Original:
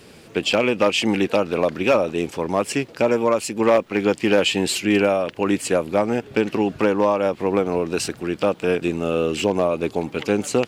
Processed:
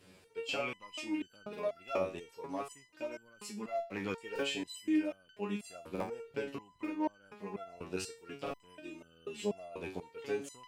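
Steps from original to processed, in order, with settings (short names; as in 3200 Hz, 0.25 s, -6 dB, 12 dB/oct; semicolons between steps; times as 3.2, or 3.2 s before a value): stuck buffer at 1.49/4.31/5.91/6.8/8.42, samples 2048, times 1; stepped resonator 4.1 Hz 94–1500 Hz; gain -5 dB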